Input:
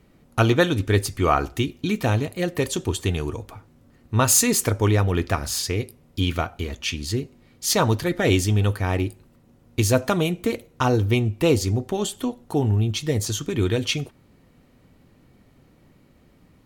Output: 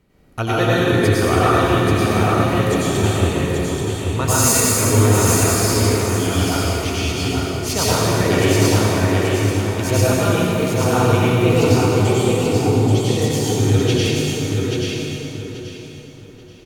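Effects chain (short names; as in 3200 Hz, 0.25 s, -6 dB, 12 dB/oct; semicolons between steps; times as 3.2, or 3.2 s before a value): feedback echo 0.833 s, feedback 26%, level -4 dB; plate-style reverb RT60 3.3 s, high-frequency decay 0.7×, pre-delay 80 ms, DRR -9.5 dB; gain -5 dB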